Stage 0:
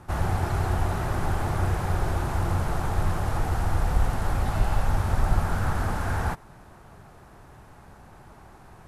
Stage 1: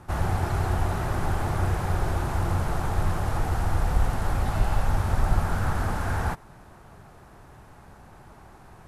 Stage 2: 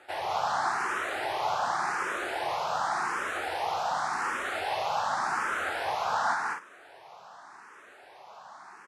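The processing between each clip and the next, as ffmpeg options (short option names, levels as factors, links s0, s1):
-af anull
-filter_complex "[0:a]highpass=740,lowpass=6200,asplit=2[s0][s1];[s1]aecho=0:1:198.3|244.9:0.708|0.447[s2];[s0][s2]amix=inputs=2:normalize=0,asplit=2[s3][s4];[s4]afreqshift=0.88[s5];[s3][s5]amix=inputs=2:normalize=1,volume=2"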